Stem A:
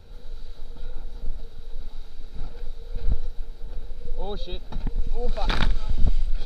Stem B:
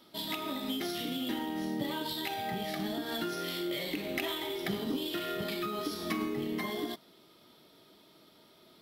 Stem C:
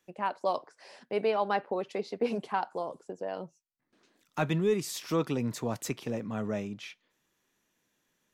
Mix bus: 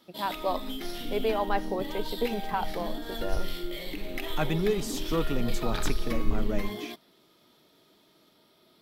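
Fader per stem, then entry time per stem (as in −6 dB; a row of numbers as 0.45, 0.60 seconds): −8.5, −2.5, 0.0 decibels; 0.25, 0.00, 0.00 seconds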